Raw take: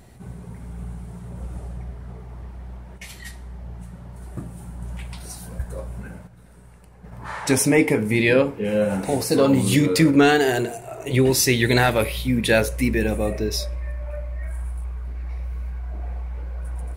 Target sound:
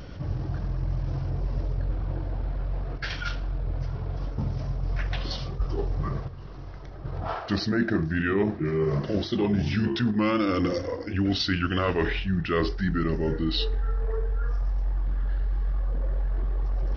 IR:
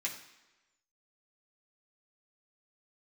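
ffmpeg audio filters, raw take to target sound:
-af "areverse,acompressor=threshold=-32dB:ratio=5,areverse,aresample=16000,aresample=44100,asetrate=33038,aresample=44100,atempo=1.33484,volume=8.5dB"

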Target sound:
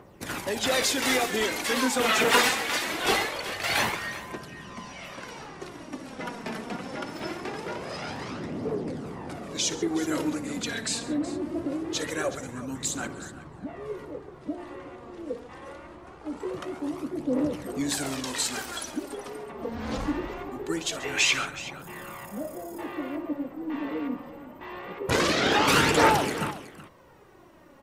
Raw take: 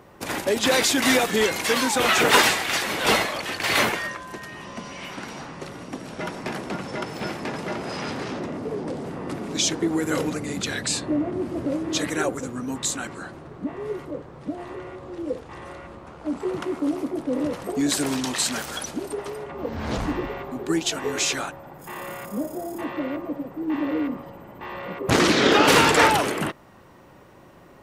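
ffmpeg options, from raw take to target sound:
ffmpeg -i in.wav -filter_complex "[0:a]asettb=1/sr,asplit=3[link_01][link_02][link_03];[link_01]atrim=end=21.034[link_04];[link_02]atrim=start=21.03:end=21.45,asetpts=PTS-STARTPTS,afade=type=in:duration=0.004:curve=qsin,afade=type=out:start_time=0.416:duration=0.004:curve=qsin,equalizer=frequency=2500:width=1.3:gain=12[link_05];[link_03]atrim=start=21.446[link_06];[link_04][link_05]acrossfade=duration=0.004:curve1=hsin:curve2=qsin[link_07];[link_07][link_06]acrossfade=duration=0.004:curve1=qsin:curve2=hsin,aphaser=in_gain=1:out_gain=1:delay=4.6:decay=0.47:speed=0.23:type=triangular,asplit=2[link_08][link_09];[link_09]aecho=0:1:59|136|372:0.158|0.133|0.168[link_10];[link_08][link_10]amix=inputs=2:normalize=0,volume=-5.5dB" out.wav

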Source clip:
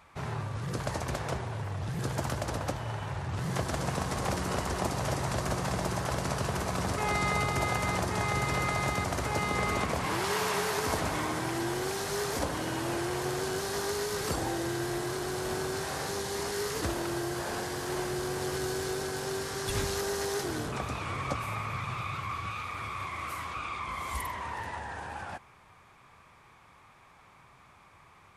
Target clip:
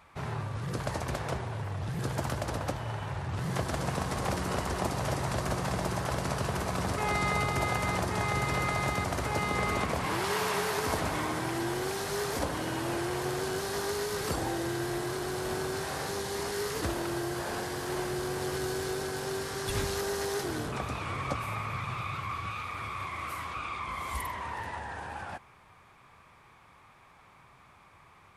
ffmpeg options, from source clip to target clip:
ffmpeg -i in.wav -af "equalizer=frequency=6600:width=1.5:gain=-2.5" out.wav

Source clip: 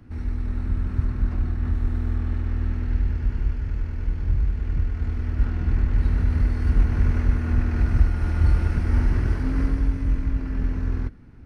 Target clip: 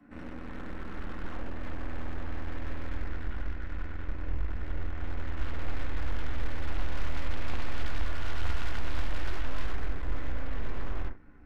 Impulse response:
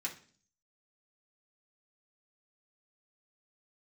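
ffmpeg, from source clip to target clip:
-filter_complex "[0:a]acrossover=split=200 2100:gain=0.0794 1 0.224[link_01][link_02][link_03];[link_01][link_02][link_03]amix=inputs=3:normalize=0[link_04];[1:a]atrim=start_sample=2205,afade=type=out:start_time=0.14:duration=0.01,atrim=end_sample=6615[link_05];[link_04][link_05]afir=irnorm=-1:irlink=0,aeval=exprs='clip(val(0),-1,0.0119)':channel_layout=same,aeval=exprs='0.0708*(cos(1*acos(clip(val(0)/0.0708,-1,1)))-cos(1*PI/2))+0.0224*(cos(6*acos(clip(val(0)/0.0708,-1,1)))-cos(6*PI/2))':channel_layout=same,asubboost=boost=12:cutoff=53"

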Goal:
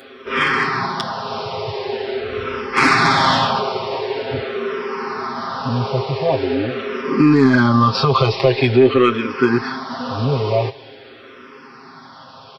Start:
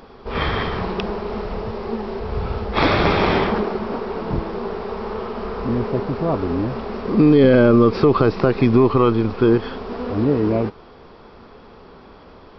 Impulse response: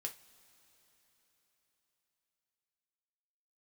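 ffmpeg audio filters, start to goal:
-filter_complex "[0:a]highpass=frequency=85:width=0.5412,highpass=frequency=85:width=1.3066,tiltshelf=frequency=1100:gain=-6.5,aecho=1:1:7.5:0.93,acontrast=60,asplit=2[link_01][link_02];[1:a]atrim=start_sample=2205[link_03];[link_02][link_03]afir=irnorm=-1:irlink=0,volume=-4.5dB[link_04];[link_01][link_04]amix=inputs=2:normalize=0,asplit=2[link_05][link_06];[link_06]afreqshift=-0.45[link_07];[link_05][link_07]amix=inputs=2:normalize=1,volume=-3dB"

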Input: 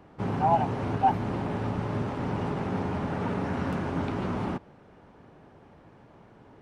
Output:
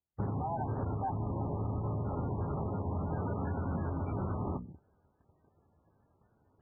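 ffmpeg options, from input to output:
ffmpeg -i in.wav -af "bandreject=frequency=60:width_type=h:width=6,bandreject=frequency=120:width_type=h:width=6,bandreject=frequency=180:width_type=h:width=6,bandreject=frequency=240:width_type=h:width=6,bandreject=frequency=300:width_type=h:width=6,agate=range=-32dB:threshold=-48dB:ratio=16:detection=peak,afwtdn=0.01,equalizer=frequency=72:width=1.1:gain=12,bandreject=frequency=5900:width=9.6,areverse,acompressor=mode=upward:threshold=-47dB:ratio=2.5,areverse,alimiter=limit=-22dB:level=0:latency=1:release=123,acompressor=threshold=-32dB:ratio=8,volume=1.5dB" -ar 16000 -c:a libmp3lame -b:a 8k out.mp3

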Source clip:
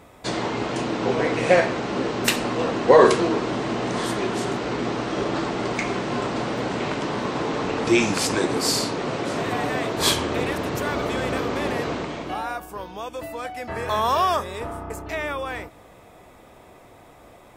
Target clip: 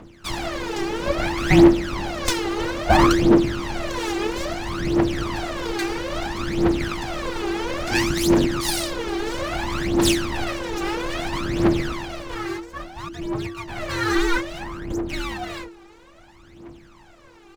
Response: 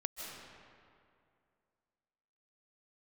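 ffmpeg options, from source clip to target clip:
-af "aresample=16000,aresample=44100,aeval=exprs='abs(val(0))':channel_layout=same,afreqshift=-340,aphaser=in_gain=1:out_gain=1:delay=2.6:decay=0.78:speed=0.6:type=triangular,volume=-1.5dB"

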